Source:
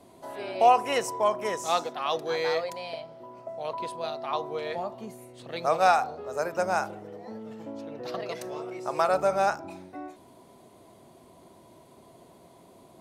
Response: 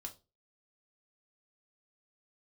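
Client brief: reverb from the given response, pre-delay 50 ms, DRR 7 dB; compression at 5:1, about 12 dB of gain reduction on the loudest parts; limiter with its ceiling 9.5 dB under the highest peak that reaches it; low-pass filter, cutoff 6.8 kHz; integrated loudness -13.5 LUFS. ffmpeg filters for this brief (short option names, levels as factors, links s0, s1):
-filter_complex "[0:a]lowpass=6800,acompressor=threshold=0.0398:ratio=5,alimiter=level_in=1.19:limit=0.0631:level=0:latency=1,volume=0.841,asplit=2[s0][s1];[1:a]atrim=start_sample=2205,adelay=50[s2];[s1][s2]afir=irnorm=-1:irlink=0,volume=0.708[s3];[s0][s3]amix=inputs=2:normalize=0,volume=13.3"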